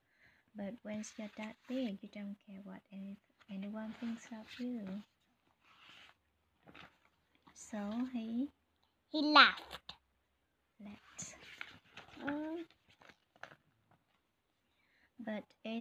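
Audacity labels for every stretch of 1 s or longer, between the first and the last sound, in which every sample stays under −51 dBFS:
13.530000	15.200000	silence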